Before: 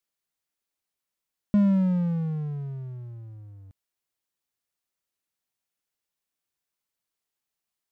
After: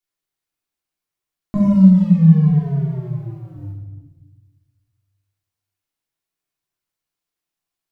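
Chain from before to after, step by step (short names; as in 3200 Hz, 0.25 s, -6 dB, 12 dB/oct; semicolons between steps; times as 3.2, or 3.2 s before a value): 2.47–3.56 low shelf 170 Hz -10 dB; sample leveller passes 2; shoebox room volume 650 m³, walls mixed, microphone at 3.3 m; gain -1.5 dB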